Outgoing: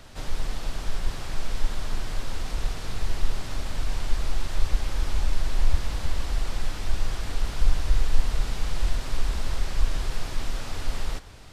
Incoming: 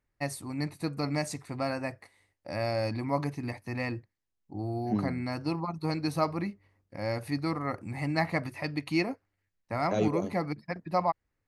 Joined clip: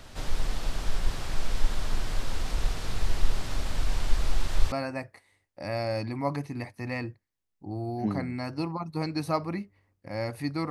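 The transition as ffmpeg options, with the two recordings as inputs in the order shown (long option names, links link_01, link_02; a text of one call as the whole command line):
ffmpeg -i cue0.wav -i cue1.wav -filter_complex "[0:a]apad=whole_dur=10.7,atrim=end=10.7,atrim=end=4.722[link_01];[1:a]atrim=start=1.598:end=7.58[link_02];[link_01][link_02]acrossfade=duration=0.004:curve1=hsin:curve2=hsin" out.wav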